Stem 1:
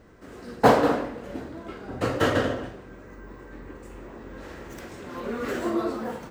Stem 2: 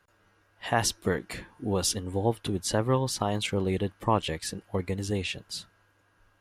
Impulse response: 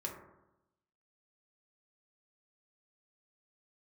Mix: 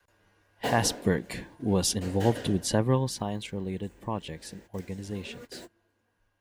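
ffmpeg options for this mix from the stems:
-filter_complex "[0:a]highshelf=f=3.6k:g=11,bandreject=f=1.1k:w=6.2,volume=-15dB[a];[1:a]adynamicequalizer=threshold=0.00891:dfrequency=180:dqfactor=1.2:tfrequency=180:tqfactor=1.2:attack=5:release=100:ratio=0.375:range=3:mode=boostabove:tftype=bell,afade=t=out:st=2.76:d=0.69:silence=0.354813,asplit=2[b][c];[c]apad=whole_len=278058[d];[a][d]sidechaingate=range=-33dB:threshold=-51dB:ratio=16:detection=peak[e];[e][b]amix=inputs=2:normalize=0,bandreject=f=1.3k:w=5.3"

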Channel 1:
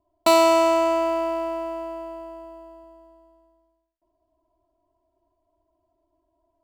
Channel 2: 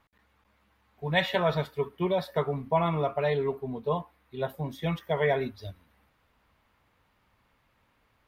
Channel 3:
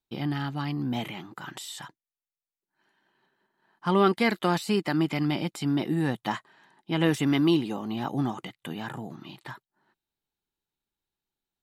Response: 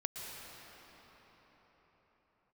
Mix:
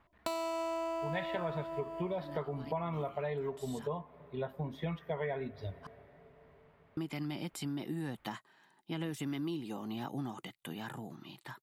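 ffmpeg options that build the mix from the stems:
-filter_complex "[0:a]alimiter=limit=-12dB:level=0:latency=1,volume=-4.5dB[a];[1:a]bass=f=250:g=1,treble=f=4k:g=-14,volume=-0.5dB,asplit=3[b][c][d];[c]volume=-24dB[e];[2:a]highshelf=f=8.2k:g=9,acrossover=split=340[f][g];[g]acompressor=threshold=-31dB:ratio=2[h];[f][h]amix=inputs=2:normalize=0,adelay=2000,volume=-7dB,asplit=3[i][j][k];[i]atrim=end=5.87,asetpts=PTS-STARTPTS,afade=t=out:st=5.866:d=0.004:c=hsin[l];[j]atrim=start=5.87:end=6.97,asetpts=PTS-STARTPTS,volume=0[m];[k]atrim=start=6.97,asetpts=PTS-STARTPTS,afade=t=in:d=0.004:c=hsin[n];[l][m][n]concat=n=3:v=0:a=1[o];[d]apad=whole_len=601080[p];[o][p]sidechaincompress=threshold=-32dB:ratio=8:attack=9.1:release=724[q];[3:a]atrim=start_sample=2205[r];[e][r]afir=irnorm=-1:irlink=0[s];[a][b][q][s]amix=inputs=4:normalize=0,acompressor=threshold=-35dB:ratio=4"

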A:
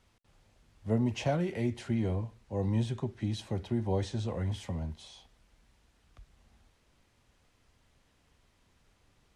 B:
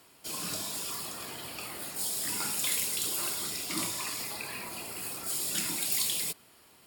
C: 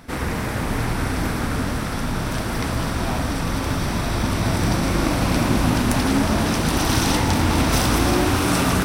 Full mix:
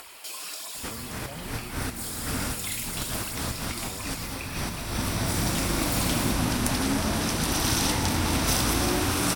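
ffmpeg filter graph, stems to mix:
-filter_complex "[0:a]volume=-15.5dB,asplit=2[a][b];[1:a]highpass=570,equalizer=f=2.4k:t=o:w=0.77:g=3.5,flanger=delay=0.1:depth=8.7:regen=30:speed=1.5:shape=sinusoidal,volume=1dB[c];[2:a]highshelf=f=3.5k:g=8.5,adelay=750,volume=-7.5dB[d];[b]apad=whole_len=423328[e];[d][e]sidechaincompress=threshold=-52dB:ratio=8:attack=7:release=104[f];[a][c][f]amix=inputs=3:normalize=0,acompressor=mode=upward:threshold=-32dB:ratio=2.5"

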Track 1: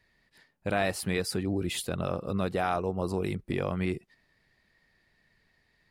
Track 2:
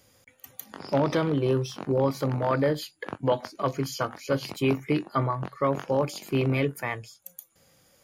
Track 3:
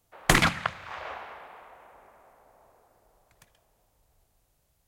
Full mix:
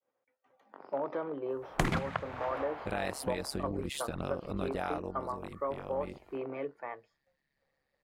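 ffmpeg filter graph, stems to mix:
-filter_complex "[0:a]tremolo=f=140:d=0.857,adelay=2200,volume=-2dB,afade=t=out:st=4.92:d=0.3:silence=0.375837[a];[1:a]lowpass=1.1k,agate=range=-33dB:threshold=-57dB:ratio=3:detection=peak,highpass=480,volume=-5dB[b];[2:a]tiltshelf=f=1.3k:g=7,adelay=1500,volume=-2dB,asplit=3[c][d][e];[c]atrim=end=3.58,asetpts=PTS-STARTPTS,afade=t=out:st=3.576:d=0.004:c=hsin[f];[d]atrim=start=3.58:end=5.23,asetpts=PTS-STARTPTS,volume=0[g];[e]atrim=start=5.23,asetpts=PTS-STARTPTS,afade=t=in:d=0.004:c=hsin[h];[f][g][h]concat=n=3:v=0:a=1[i];[a][b][i]amix=inputs=3:normalize=0,acompressor=threshold=-29dB:ratio=3"

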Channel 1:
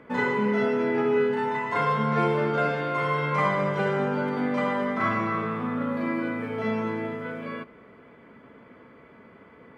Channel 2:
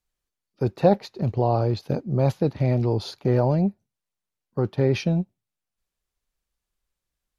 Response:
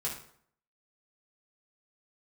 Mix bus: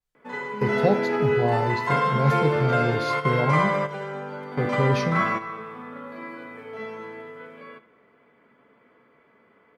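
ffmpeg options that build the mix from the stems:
-filter_complex "[0:a]lowshelf=f=210:g=-11.5,adelay=150,volume=2dB,asplit=2[a][b];[b]volume=-22dB[c];[1:a]volume=-7dB,asplit=3[d][e][f];[e]volume=-6dB[g];[f]apad=whole_len=437758[h];[a][h]sidechaingate=range=-10dB:threshold=-51dB:ratio=16:detection=peak[i];[2:a]atrim=start_sample=2205[j];[c][g]amix=inputs=2:normalize=0[k];[k][j]afir=irnorm=-1:irlink=0[l];[i][d][l]amix=inputs=3:normalize=0,adynamicequalizer=threshold=0.00562:dfrequency=4200:dqfactor=0.7:tfrequency=4200:tqfactor=0.7:attack=5:release=100:ratio=0.375:range=2:mode=boostabove:tftype=highshelf"

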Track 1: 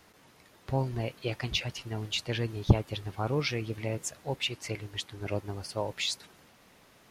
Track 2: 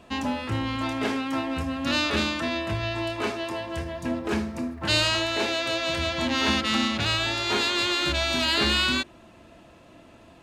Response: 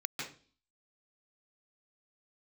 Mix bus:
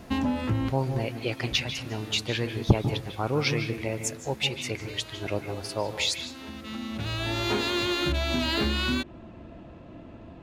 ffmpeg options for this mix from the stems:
-filter_complex "[0:a]volume=1.5dB,asplit=3[a][b][c];[b]volume=-6.5dB[d];[1:a]adynamicsmooth=sensitivity=8:basefreq=3.9k,lowshelf=f=460:g=11,acompressor=threshold=-22dB:ratio=6,volume=-1dB[e];[c]apad=whole_len=459868[f];[e][f]sidechaincompress=threshold=-47dB:ratio=6:attack=8.3:release=866[g];[2:a]atrim=start_sample=2205[h];[d][h]afir=irnorm=-1:irlink=0[i];[a][g][i]amix=inputs=3:normalize=0"

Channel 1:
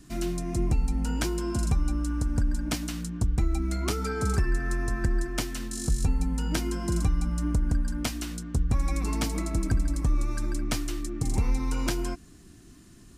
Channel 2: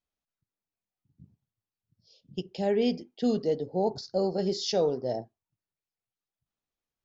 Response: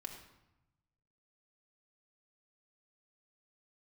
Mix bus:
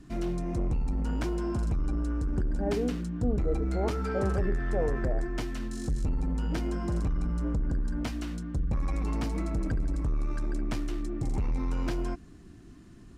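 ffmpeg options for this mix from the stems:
-filter_complex "[0:a]asoftclip=type=tanh:threshold=-25.5dB,lowpass=f=1.8k:p=1,volume=1.5dB[a];[1:a]lowpass=f=1.6k:w=0.5412,lowpass=f=1.6k:w=1.3066,volume=-5dB[b];[a][b]amix=inputs=2:normalize=0"

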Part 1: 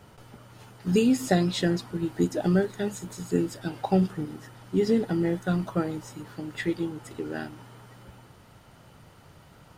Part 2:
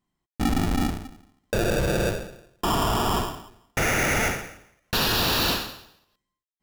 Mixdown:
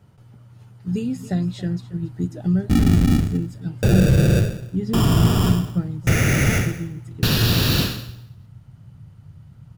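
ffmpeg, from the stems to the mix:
-filter_complex "[0:a]asubboost=boost=3.5:cutoff=200,volume=-9.5dB,asplit=2[a][b];[b]volume=-16dB[c];[1:a]equalizer=f=880:t=o:w=0.92:g=-9.5,adelay=2300,volume=1.5dB[d];[c]aecho=0:1:278:1[e];[a][d][e]amix=inputs=3:normalize=0,equalizer=f=120:t=o:w=1.7:g=14"

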